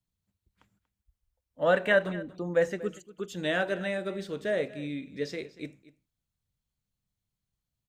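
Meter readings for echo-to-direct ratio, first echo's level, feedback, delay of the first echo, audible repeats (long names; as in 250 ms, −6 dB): −18.0 dB, −18.0 dB, repeats not evenly spaced, 237 ms, 1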